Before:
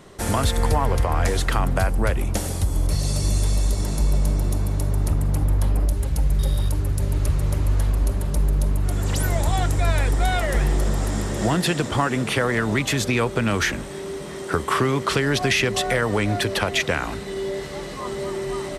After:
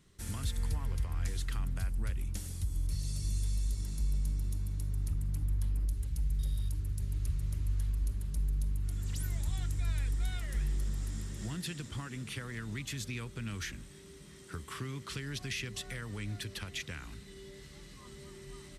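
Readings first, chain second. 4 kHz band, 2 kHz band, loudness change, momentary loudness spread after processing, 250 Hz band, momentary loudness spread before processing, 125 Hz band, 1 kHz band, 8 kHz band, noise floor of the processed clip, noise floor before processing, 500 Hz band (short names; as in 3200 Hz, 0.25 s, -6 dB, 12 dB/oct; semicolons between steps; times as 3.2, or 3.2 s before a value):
-16.0 dB, -19.5 dB, -14.0 dB, 13 LU, -18.5 dB, 6 LU, -13.0 dB, -26.0 dB, -14.5 dB, -52 dBFS, -32 dBFS, -26.5 dB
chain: passive tone stack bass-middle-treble 6-0-2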